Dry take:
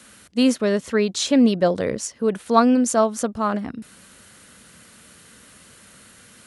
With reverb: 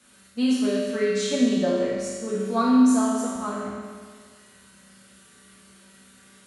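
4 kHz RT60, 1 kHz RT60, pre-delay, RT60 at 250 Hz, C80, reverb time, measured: 1.6 s, 1.7 s, 5 ms, 1.7 s, 0.5 dB, 1.7 s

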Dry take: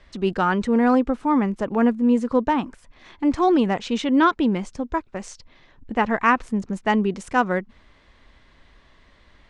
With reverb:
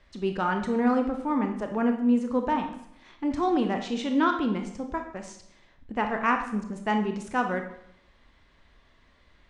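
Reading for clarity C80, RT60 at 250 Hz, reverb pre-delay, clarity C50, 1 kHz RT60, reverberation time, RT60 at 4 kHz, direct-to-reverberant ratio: 11.0 dB, 0.70 s, 22 ms, 7.5 dB, 0.70 s, 0.75 s, 0.60 s, 4.5 dB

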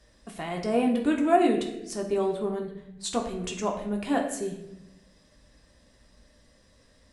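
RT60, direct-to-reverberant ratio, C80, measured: 0.85 s, 0.5 dB, 9.0 dB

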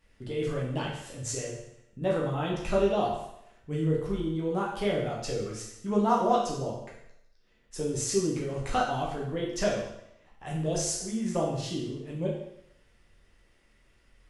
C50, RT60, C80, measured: 3.0 dB, 0.80 s, 6.5 dB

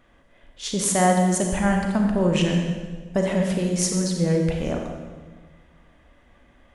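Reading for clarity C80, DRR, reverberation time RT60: 5.0 dB, 2.0 dB, 1.4 s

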